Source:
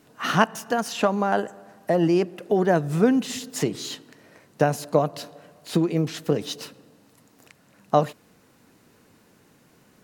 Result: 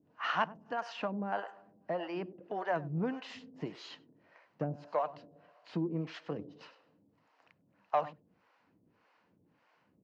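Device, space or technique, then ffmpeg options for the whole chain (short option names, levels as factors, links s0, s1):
guitar amplifier with harmonic tremolo: -filter_complex "[0:a]asettb=1/sr,asplit=3[s0][s1][s2];[s0]atrim=end=1.914[s3];[s1]atrim=start=1.91:end=2.37,asetpts=PTS-STARTPTS,afade=t=in:d=0.004:c=qsin,afade=t=out:st=0.456:d=0.004:c=qsin,lowpass=f=5000:w=0.5412,lowpass=f=5000:w=1.3066[s4];[s2]atrim=start=2.366[s5];[s3][s4]acrossfade=d=0.004:c1=hsin:c2=qsin[s6];[s6][s5]acrossfade=d=0.004:c1=qsin:c2=hsin,asplit=2[s7][s8];[s8]adelay=99.13,volume=0.158,highshelf=f=4000:g=-2.23[s9];[s7][s9]amix=inputs=2:normalize=0,acrossover=split=490[s10][s11];[s10]aeval=exprs='val(0)*(1-1/2+1/2*cos(2*PI*1.7*n/s))':c=same[s12];[s11]aeval=exprs='val(0)*(1-1/2-1/2*cos(2*PI*1.7*n/s))':c=same[s13];[s12][s13]amix=inputs=2:normalize=0,asoftclip=type=tanh:threshold=0.211,highpass=83,equalizer=f=130:t=q:w=4:g=-5,equalizer=f=230:t=q:w=4:g=-5,equalizer=f=410:t=q:w=4:g=-6,equalizer=f=960:t=q:w=4:g=4,equalizer=f=3700:t=q:w=4:g=-8,lowpass=f=4000:w=0.5412,lowpass=f=4000:w=1.3066,volume=0.473"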